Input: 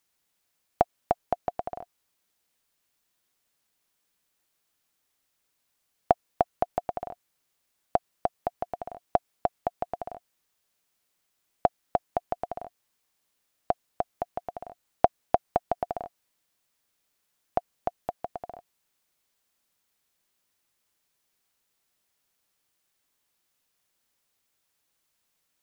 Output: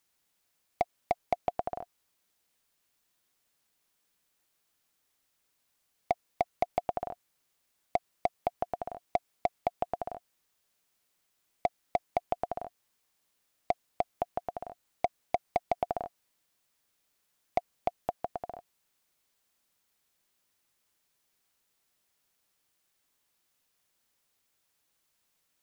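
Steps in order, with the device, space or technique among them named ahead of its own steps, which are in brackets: limiter into clipper (peak limiter -10.5 dBFS, peak gain reduction 7.5 dB; hard clipper -16.5 dBFS, distortion -14 dB)

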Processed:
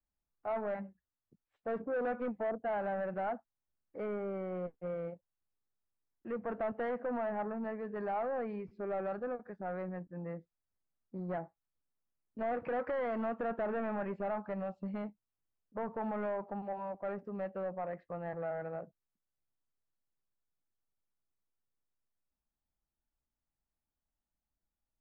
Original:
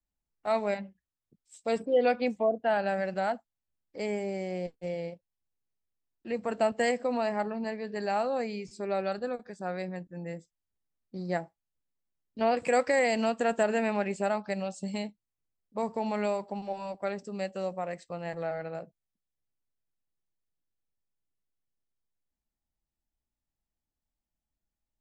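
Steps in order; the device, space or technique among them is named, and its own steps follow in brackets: overdriven synthesiser ladder filter (saturation -29.5 dBFS, distortion -8 dB; four-pole ladder low-pass 1.9 kHz, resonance 25%); trim +3.5 dB

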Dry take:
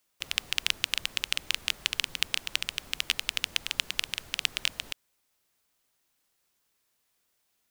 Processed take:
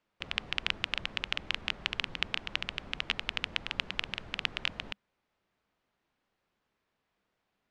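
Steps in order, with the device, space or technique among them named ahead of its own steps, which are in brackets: phone in a pocket (low-pass 3.5 kHz 12 dB/octave; peaking EQ 200 Hz +5 dB 0.21 oct; treble shelf 2.3 kHz -10 dB); trim +4 dB

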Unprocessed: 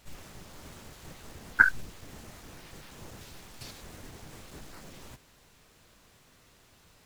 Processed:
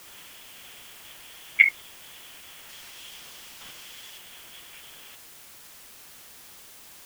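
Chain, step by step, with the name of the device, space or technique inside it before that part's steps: scrambled radio voice (band-pass 350–3200 Hz; frequency inversion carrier 3.7 kHz; white noise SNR 14 dB); 2.69–4.18 s: peaking EQ 4.9 kHz +5 dB 1.3 oct; trim +3 dB

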